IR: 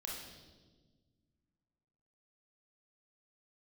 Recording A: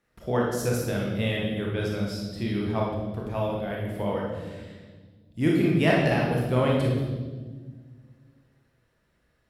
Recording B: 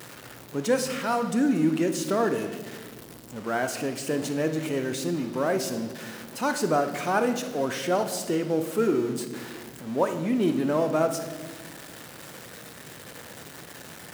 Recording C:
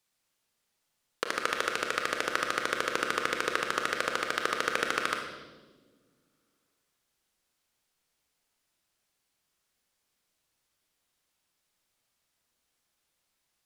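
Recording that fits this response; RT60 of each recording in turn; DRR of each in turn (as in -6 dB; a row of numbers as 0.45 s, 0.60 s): A; 1.4 s, 1.4 s, 1.4 s; -3.0 dB, 7.0 dB, 3.0 dB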